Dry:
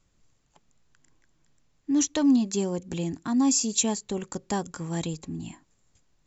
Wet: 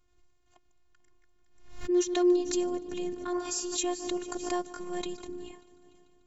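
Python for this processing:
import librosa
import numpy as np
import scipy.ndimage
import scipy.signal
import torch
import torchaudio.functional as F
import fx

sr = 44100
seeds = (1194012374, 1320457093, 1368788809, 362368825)

y = fx.high_shelf(x, sr, hz=5500.0, db=-11.0)
y = fx.echo_heads(y, sr, ms=147, heads='first and third', feedback_pct=53, wet_db=-21)
y = fx.spec_repair(y, sr, seeds[0], start_s=3.36, length_s=0.33, low_hz=240.0, high_hz=2200.0, source='both')
y = fx.robotise(y, sr, hz=356.0)
y = fx.pre_swell(y, sr, db_per_s=83.0)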